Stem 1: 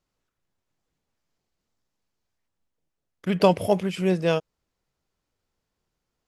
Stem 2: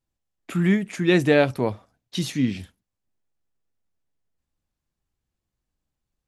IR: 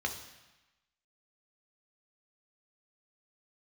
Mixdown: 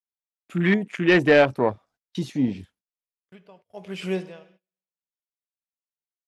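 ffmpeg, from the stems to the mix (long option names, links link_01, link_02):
-filter_complex "[0:a]acrossover=split=2800[link_01][link_02];[link_02]acompressor=threshold=-41dB:ratio=4:attack=1:release=60[link_03];[link_01][link_03]amix=inputs=2:normalize=0,aeval=exprs='val(0)*pow(10,-32*(0.5-0.5*cos(2*PI*1*n/s))/20)':channel_layout=same,adelay=50,volume=-3dB,asplit=2[link_04][link_05];[link_05]volume=-13dB[link_06];[1:a]afwtdn=0.0316,volume=0dB[link_07];[2:a]atrim=start_sample=2205[link_08];[link_06][link_08]afir=irnorm=-1:irlink=0[link_09];[link_04][link_07][link_09]amix=inputs=3:normalize=0,agate=range=-28dB:threshold=-56dB:ratio=16:detection=peak,asplit=2[link_10][link_11];[link_11]highpass=frequency=720:poles=1,volume=13dB,asoftclip=type=tanh:threshold=-5dB[link_12];[link_10][link_12]amix=inputs=2:normalize=0,lowpass=frequency=5800:poles=1,volume=-6dB"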